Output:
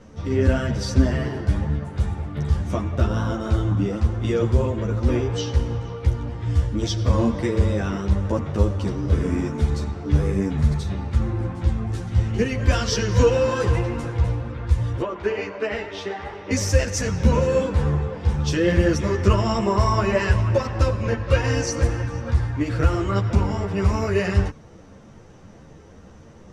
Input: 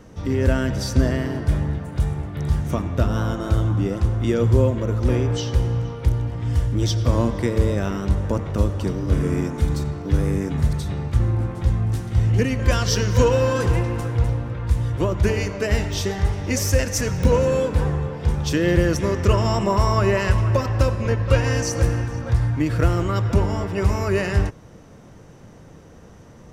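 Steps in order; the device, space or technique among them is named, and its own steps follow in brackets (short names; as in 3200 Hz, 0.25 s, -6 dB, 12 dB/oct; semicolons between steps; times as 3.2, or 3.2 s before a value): 15.01–16.51 three-band isolator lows -21 dB, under 280 Hz, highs -17 dB, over 3500 Hz; string-machine ensemble chorus (ensemble effect; LPF 7700 Hz 12 dB/oct); gain +2.5 dB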